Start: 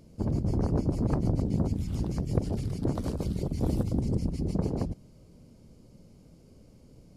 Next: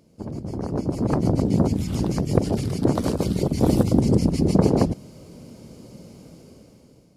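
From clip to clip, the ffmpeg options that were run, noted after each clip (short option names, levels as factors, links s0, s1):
-af "highpass=f=200:p=1,dynaudnorm=f=320:g=7:m=6.31"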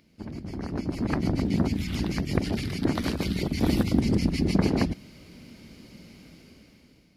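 -af "equalizer=f=125:t=o:w=1:g=-8,equalizer=f=500:t=o:w=1:g=-10,equalizer=f=1000:t=o:w=1:g=-5,equalizer=f=2000:t=o:w=1:g=9,equalizer=f=4000:t=o:w=1:g=4,equalizer=f=8000:t=o:w=1:g=-9"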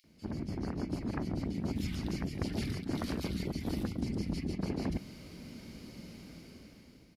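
-filter_complex "[0:a]areverse,acompressor=threshold=0.0282:ratio=10,areverse,acrossover=split=2600[s0][s1];[s0]adelay=40[s2];[s2][s1]amix=inputs=2:normalize=0"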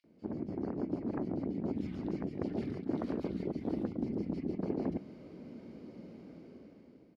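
-af "bandpass=f=420:t=q:w=1:csg=0,volume=1.58"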